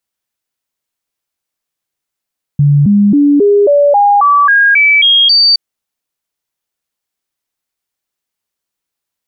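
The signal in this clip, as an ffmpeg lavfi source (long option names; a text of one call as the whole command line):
ffmpeg -f lavfi -i "aevalsrc='0.596*clip(min(mod(t,0.27),0.27-mod(t,0.27))/0.005,0,1)*sin(2*PI*144*pow(2,floor(t/0.27)/2)*mod(t,0.27))':duration=2.97:sample_rate=44100" out.wav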